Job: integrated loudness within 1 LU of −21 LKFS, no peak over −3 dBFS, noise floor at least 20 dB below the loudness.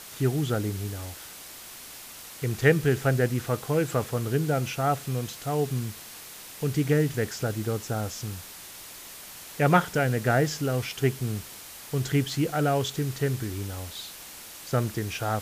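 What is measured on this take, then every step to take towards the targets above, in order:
background noise floor −44 dBFS; target noise floor −48 dBFS; integrated loudness −27.5 LKFS; sample peak −6.5 dBFS; target loudness −21.0 LKFS
→ broadband denoise 6 dB, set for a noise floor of −44 dBFS
level +6.5 dB
brickwall limiter −3 dBFS

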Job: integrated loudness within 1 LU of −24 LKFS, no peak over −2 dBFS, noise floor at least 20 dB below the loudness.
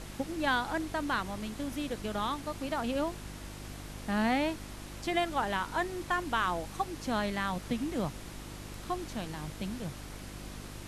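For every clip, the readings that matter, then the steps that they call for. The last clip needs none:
mains hum 50 Hz; hum harmonics up to 350 Hz; level of the hum −44 dBFS; background noise floor −45 dBFS; target noise floor −54 dBFS; integrated loudness −34.0 LKFS; sample peak −17.0 dBFS; target loudness −24.0 LKFS
→ hum removal 50 Hz, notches 7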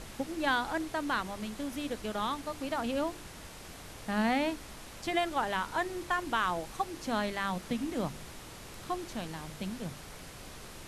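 mains hum none found; background noise floor −48 dBFS; target noise floor −54 dBFS
→ noise reduction from a noise print 6 dB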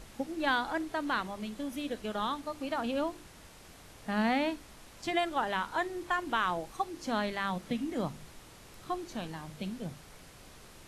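background noise floor −54 dBFS; integrated loudness −34.0 LKFS; sample peak −17.0 dBFS; target loudness −24.0 LKFS
→ level +10 dB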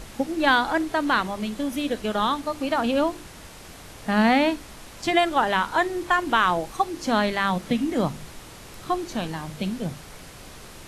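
integrated loudness −24.0 LKFS; sample peak −7.0 dBFS; background noise floor −44 dBFS

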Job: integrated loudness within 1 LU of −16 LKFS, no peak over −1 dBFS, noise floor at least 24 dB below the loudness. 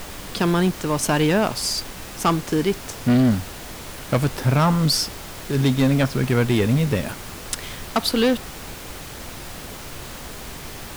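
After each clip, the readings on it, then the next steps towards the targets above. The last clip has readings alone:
share of clipped samples 1.4%; peaks flattened at −12.5 dBFS; background noise floor −36 dBFS; target noise floor −46 dBFS; integrated loudness −21.5 LKFS; sample peak −12.5 dBFS; target loudness −16.0 LKFS
→ clipped peaks rebuilt −12.5 dBFS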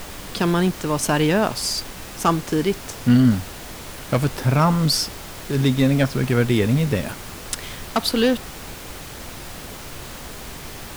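share of clipped samples 0.0%; background noise floor −36 dBFS; target noise floor −45 dBFS
→ noise reduction from a noise print 9 dB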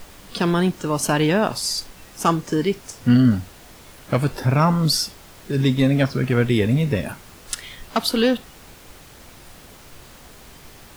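background noise floor −45 dBFS; integrated loudness −21.0 LKFS; sample peak −6.5 dBFS; target loudness −16.0 LKFS
→ level +5 dB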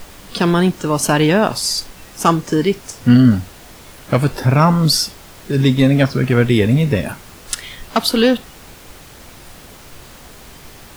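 integrated loudness −16.0 LKFS; sample peak −1.5 dBFS; background noise floor −40 dBFS

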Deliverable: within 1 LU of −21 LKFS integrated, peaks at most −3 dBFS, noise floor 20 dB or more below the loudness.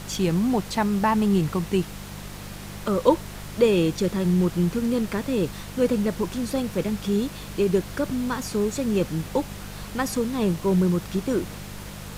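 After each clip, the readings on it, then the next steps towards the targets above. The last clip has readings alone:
mains hum 50 Hz; hum harmonics up to 200 Hz; level of the hum −37 dBFS; background noise floor −38 dBFS; target noise floor −45 dBFS; integrated loudness −24.5 LKFS; sample peak −4.0 dBFS; target loudness −21.0 LKFS
→ hum removal 50 Hz, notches 4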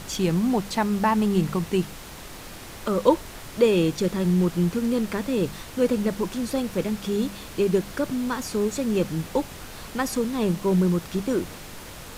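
mains hum none found; background noise floor −41 dBFS; target noise floor −45 dBFS
→ noise reduction from a noise print 6 dB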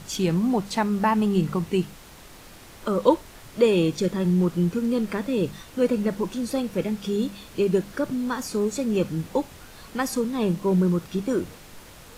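background noise floor −46 dBFS; integrated loudness −24.5 LKFS; sample peak −4.5 dBFS; target loudness −21.0 LKFS
→ level +3.5 dB
brickwall limiter −3 dBFS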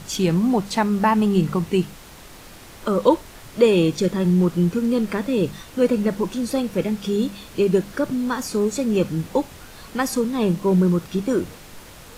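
integrated loudness −21.5 LKFS; sample peak −3.0 dBFS; background noise floor −43 dBFS

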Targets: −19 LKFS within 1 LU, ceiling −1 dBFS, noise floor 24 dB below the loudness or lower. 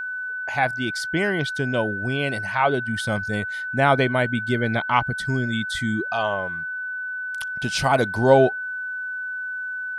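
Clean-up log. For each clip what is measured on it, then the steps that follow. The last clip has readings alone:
interfering tone 1,500 Hz; level of the tone −27 dBFS; integrated loudness −23.0 LKFS; sample peak −3.5 dBFS; target loudness −19.0 LKFS
→ notch filter 1,500 Hz, Q 30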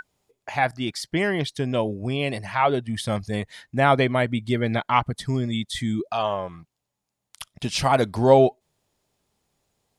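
interfering tone none found; integrated loudness −23.5 LKFS; sample peak −3.5 dBFS; target loudness −19.0 LKFS
→ level +4.5 dB
brickwall limiter −1 dBFS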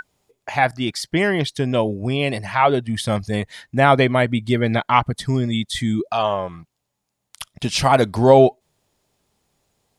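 integrated loudness −19.0 LKFS; sample peak −1.0 dBFS; background noise floor −77 dBFS

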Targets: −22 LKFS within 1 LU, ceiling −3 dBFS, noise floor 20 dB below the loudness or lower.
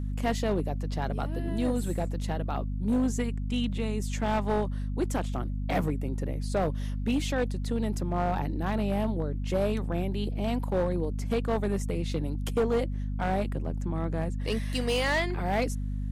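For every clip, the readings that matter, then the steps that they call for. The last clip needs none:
share of clipped samples 1.3%; peaks flattened at −20.5 dBFS; mains hum 50 Hz; hum harmonics up to 250 Hz; level of the hum −29 dBFS; integrated loudness −30.0 LKFS; sample peak −20.5 dBFS; target loudness −22.0 LKFS
→ clipped peaks rebuilt −20.5 dBFS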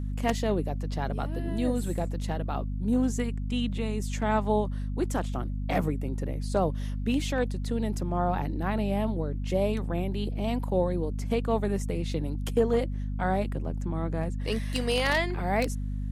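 share of clipped samples 0.0%; mains hum 50 Hz; hum harmonics up to 250 Hz; level of the hum −29 dBFS
→ hum removal 50 Hz, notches 5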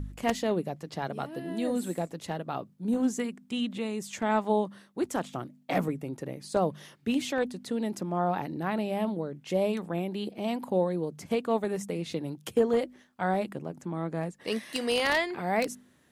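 mains hum none found; integrated loudness −31.0 LKFS; sample peak −10.5 dBFS; target loudness −22.0 LKFS
→ level +9 dB
brickwall limiter −3 dBFS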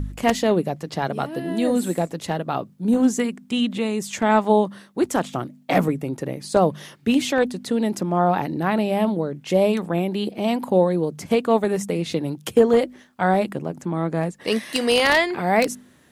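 integrated loudness −22.0 LKFS; sample peak −3.0 dBFS; background noise floor −52 dBFS

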